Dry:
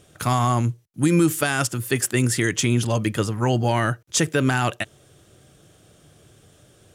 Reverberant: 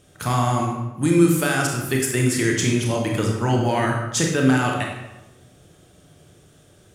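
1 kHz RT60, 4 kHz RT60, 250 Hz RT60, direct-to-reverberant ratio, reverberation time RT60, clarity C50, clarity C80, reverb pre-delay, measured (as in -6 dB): 1.0 s, 0.75 s, 1.2 s, -0.5 dB, 1.0 s, 3.0 dB, 5.5 dB, 26 ms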